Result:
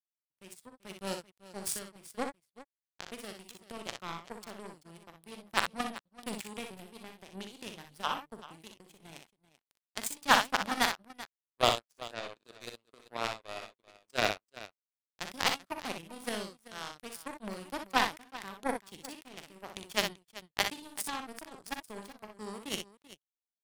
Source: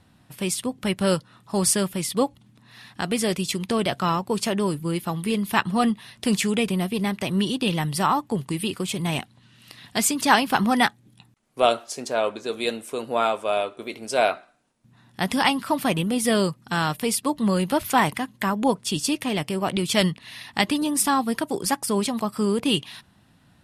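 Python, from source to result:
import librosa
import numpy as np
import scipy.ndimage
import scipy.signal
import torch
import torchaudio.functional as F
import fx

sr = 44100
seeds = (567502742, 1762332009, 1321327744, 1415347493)

y = fx.power_curve(x, sr, exponent=3.0)
y = np.clip(y, -10.0 ** (-16.5 / 20.0), 10.0 ** (-16.5 / 20.0))
y = fx.echo_multitap(y, sr, ms=(42, 61, 386), db=(-11.0, -6.5, -16.5))
y = y * librosa.db_to_amplitude(7.5)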